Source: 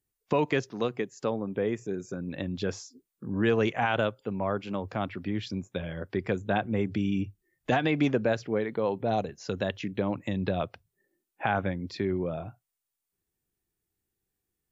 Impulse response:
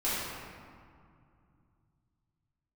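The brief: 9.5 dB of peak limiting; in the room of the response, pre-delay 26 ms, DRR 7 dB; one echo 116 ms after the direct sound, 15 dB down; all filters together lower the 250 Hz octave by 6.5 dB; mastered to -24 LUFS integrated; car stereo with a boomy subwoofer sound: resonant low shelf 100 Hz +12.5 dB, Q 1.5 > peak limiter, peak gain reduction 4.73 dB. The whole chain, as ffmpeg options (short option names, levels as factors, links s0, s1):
-filter_complex "[0:a]equalizer=f=250:t=o:g=-6.5,alimiter=limit=0.0891:level=0:latency=1,aecho=1:1:116:0.178,asplit=2[s0][s1];[1:a]atrim=start_sample=2205,adelay=26[s2];[s1][s2]afir=irnorm=-1:irlink=0,volume=0.15[s3];[s0][s3]amix=inputs=2:normalize=0,lowshelf=f=100:t=q:w=1.5:g=12.5,volume=3.16,alimiter=limit=0.266:level=0:latency=1"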